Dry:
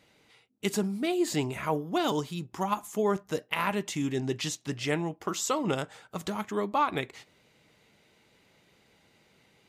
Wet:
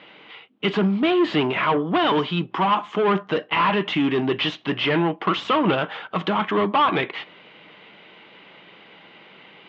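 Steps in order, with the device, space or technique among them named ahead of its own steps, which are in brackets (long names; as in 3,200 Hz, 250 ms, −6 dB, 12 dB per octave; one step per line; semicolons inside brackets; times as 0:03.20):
overdrive pedal into a guitar cabinet (mid-hump overdrive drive 25 dB, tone 3,000 Hz, clips at −13 dBFS; loudspeaker in its box 100–3,400 Hz, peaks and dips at 180 Hz +7 dB, 320 Hz +4 dB, 1,100 Hz +4 dB, 3,100 Hz +7 dB)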